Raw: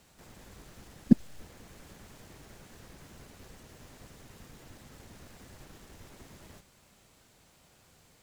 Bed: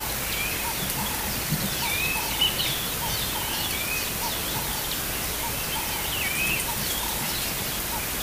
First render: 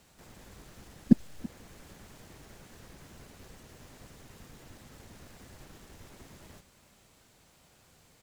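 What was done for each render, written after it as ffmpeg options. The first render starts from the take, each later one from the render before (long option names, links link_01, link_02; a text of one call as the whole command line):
ffmpeg -i in.wav -af "aecho=1:1:331:0.0944" out.wav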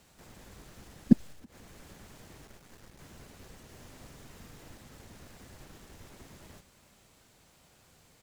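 ffmpeg -i in.wav -filter_complex "[0:a]asettb=1/sr,asplit=3[link_01][link_02][link_03];[link_01]atrim=end=1.324[link_04];[link_02]atrim=start=1.32:end=1.76,asetpts=PTS-STARTPTS,afade=type=in:duration=0.004:curve=qsin,afade=type=out:start_time=0.436:duration=0.004:curve=qsin,acompressor=threshold=-47dB:ratio=8:attack=3.2:release=140:knee=1:detection=peak[link_05];[link_03]atrim=start=1.756[link_06];[link_04][link_05]acrossfade=duration=0.004:curve1=hsin:curve2=qsin[link_07];[link_07][link_06]acrossfade=duration=0.004:curve1=qsin:curve2=hsin,asettb=1/sr,asplit=3[link_08][link_09][link_10];[link_08]atrim=end=2.474[link_11];[link_09]atrim=start=2.47:end=2.99,asetpts=PTS-STARTPTS,afade=type=in:duration=0.004:curve=qsin,afade=type=out:start_time=0.516:duration=0.004:curve=qsin,aeval=exprs='if(lt(val(0),0),0.251*val(0),val(0))':channel_layout=same[link_12];[link_10]atrim=start=2.986[link_13];[link_11][link_12]acrossfade=duration=0.004:curve1=hsin:curve2=qsin[link_14];[link_14][link_13]acrossfade=duration=0.004:curve1=qsin:curve2=hsin,asettb=1/sr,asplit=3[link_15][link_16][link_17];[link_15]atrim=end=3.674[link_18];[link_16]atrim=start=3.67:end=4.75,asetpts=PTS-STARTPTS,afade=type=in:duration=0.004:curve=qsin,afade=type=out:start_time=1.076:duration=0.004:curve=qsin,asplit=2[link_19][link_20];[link_20]adelay=43,volume=-6dB[link_21];[link_19][link_21]amix=inputs=2:normalize=0,atrim=end_sample=47628[link_22];[link_17]atrim=start=4.746[link_23];[link_18][link_22]acrossfade=duration=0.004:curve1=hsin:curve2=qsin[link_24];[link_24][link_23]acrossfade=duration=0.004:curve1=qsin:curve2=hsin" out.wav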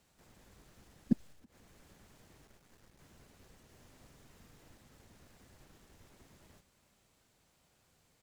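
ffmpeg -i in.wav -af "volume=-9.5dB" out.wav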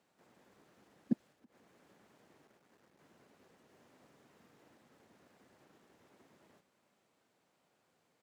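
ffmpeg -i in.wav -af "highpass=230,highshelf=frequency=3100:gain=-11.5" out.wav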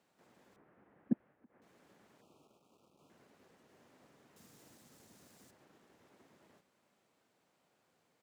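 ffmpeg -i in.wav -filter_complex "[0:a]asettb=1/sr,asplit=3[link_01][link_02][link_03];[link_01]atrim=end=0.564[link_04];[link_02]atrim=start=0.56:end=1.62,asetpts=PTS-STARTPTS,afade=type=in:duration=0.004:curve=qsin,afade=type=out:start_time=1.056:duration=0.004:curve=qsin,lowpass=frequency=2100:width=0.5412,lowpass=frequency=2100:width=1.3066[link_05];[link_03]atrim=start=1.616[link_06];[link_04][link_05]acrossfade=duration=0.004:curve1=hsin:curve2=qsin[link_07];[link_07][link_06]acrossfade=duration=0.004:curve1=qsin:curve2=hsin,asettb=1/sr,asplit=3[link_08][link_09][link_10];[link_08]atrim=end=2.214[link_11];[link_09]atrim=start=2.21:end=3.1,asetpts=PTS-STARTPTS,afade=type=in:duration=0.004:curve=qsin,afade=type=out:start_time=0.886:duration=0.004:curve=qsin,asuperstop=centerf=1800:order=12:qfactor=1.7[link_12];[link_10]atrim=start=3.096[link_13];[link_11][link_12]acrossfade=duration=0.004:curve1=hsin:curve2=qsin[link_14];[link_14][link_13]acrossfade=duration=0.004:curve1=qsin:curve2=hsin,asettb=1/sr,asplit=3[link_15][link_16][link_17];[link_15]atrim=end=4.364[link_18];[link_16]atrim=start=4.36:end=5.51,asetpts=PTS-STARTPTS,afade=type=in:duration=0.004:curve=qsin,afade=type=out:start_time=1.146:duration=0.004:curve=qsin,bass=frequency=250:gain=6,treble=frequency=4000:gain=15[link_19];[link_17]atrim=start=5.506[link_20];[link_18][link_19]acrossfade=duration=0.004:curve1=hsin:curve2=qsin[link_21];[link_21][link_20]acrossfade=duration=0.004:curve1=qsin:curve2=hsin" out.wav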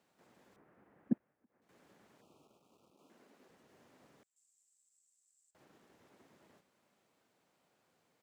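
ffmpeg -i in.wav -filter_complex "[0:a]asettb=1/sr,asplit=3[link_01][link_02][link_03];[link_01]atrim=end=2.914[link_04];[link_02]atrim=start=2.91:end=3.49,asetpts=PTS-STARTPTS,afade=type=in:duration=0.004:curve=qsin,afade=type=out:start_time=0.576:duration=0.004:curve=qsin,lowshelf=frequency=170:width_type=q:width=1.5:gain=-9[link_05];[link_03]atrim=start=3.486[link_06];[link_04][link_05]acrossfade=duration=0.004:curve1=hsin:curve2=qsin[link_07];[link_07][link_06]acrossfade=duration=0.004:curve1=qsin:curve2=hsin,asettb=1/sr,asplit=3[link_08][link_09][link_10];[link_08]atrim=end=4.234[link_11];[link_09]atrim=start=4.23:end=5.55,asetpts=PTS-STARTPTS,afade=type=in:duration=0.004:curve=qsin,afade=type=out:start_time=1.316:duration=0.004:curve=qsin,bandpass=frequency=7700:width_type=q:width=9.1[link_12];[link_10]atrim=start=5.546[link_13];[link_11][link_12]acrossfade=duration=0.004:curve1=hsin:curve2=qsin[link_14];[link_14][link_13]acrossfade=duration=0.004:curve1=qsin:curve2=hsin,asplit=3[link_15][link_16][link_17];[link_15]atrim=end=1.182[link_18];[link_16]atrim=start=1.178:end=1.692,asetpts=PTS-STARTPTS,volume=-9dB[link_19];[link_17]atrim=start=1.688[link_20];[link_18][link_19]acrossfade=duration=0.004:curve1=hsin:curve2=hsin[link_21];[link_21][link_20]acrossfade=duration=0.004:curve1=hsin:curve2=hsin" out.wav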